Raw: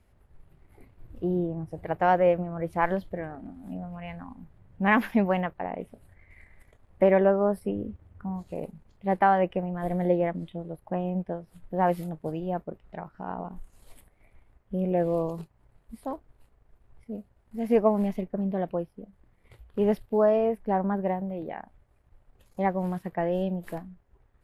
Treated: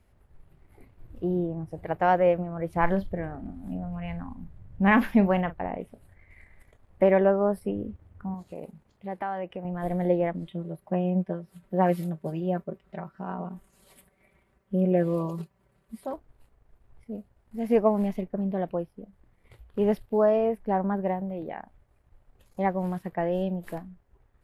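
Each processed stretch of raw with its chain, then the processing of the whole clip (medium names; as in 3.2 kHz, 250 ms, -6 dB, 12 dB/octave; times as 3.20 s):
2.76–5.78 s: bass shelf 140 Hz +11 dB + doubling 41 ms -14 dB
8.34–9.65 s: high-pass 130 Hz 6 dB/octave + compression 2:1, threshold -36 dBFS
10.47–16.14 s: high-pass 88 Hz + peaking EQ 830 Hz -6.5 dB 0.23 oct + comb 5.2 ms, depth 69%
whole clip: none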